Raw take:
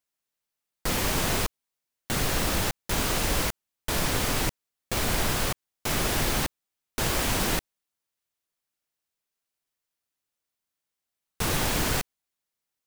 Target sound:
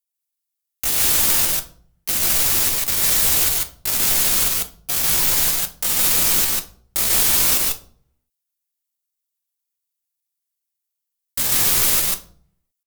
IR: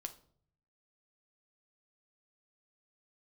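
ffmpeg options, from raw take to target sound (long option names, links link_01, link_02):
-filter_complex "[0:a]crystalizer=i=8.5:c=0,aeval=exprs='1.41*(cos(1*acos(clip(val(0)/1.41,-1,1)))-cos(1*PI/2))+0.0708*(cos(2*acos(clip(val(0)/1.41,-1,1)))-cos(2*PI/2))+0.0447*(cos(6*acos(clip(val(0)/1.41,-1,1)))-cos(6*PI/2))+0.141*(cos(7*acos(clip(val(0)/1.41,-1,1)))-cos(7*PI/2))+0.0398*(cos(8*acos(clip(val(0)/1.41,-1,1)))-cos(8*PI/2))':channel_layout=same,asetrate=62367,aresample=44100,atempo=0.707107,asplit=2[link_01][link_02];[1:a]atrim=start_sample=2205,asetrate=48510,aresample=44100,adelay=145[link_03];[link_02][link_03]afir=irnorm=-1:irlink=0,volume=4dB[link_04];[link_01][link_04]amix=inputs=2:normalize=0,volume=-5dB"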